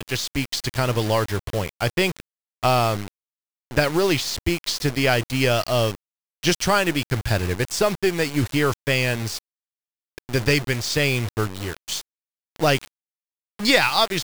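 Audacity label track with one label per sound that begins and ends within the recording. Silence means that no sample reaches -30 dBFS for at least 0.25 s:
2.630000	3.080000	sound
3.710000	5.950000	sound
6.430000	9.390000	sound
10.180000	12.010000	sound
12.560000	12.870000	sound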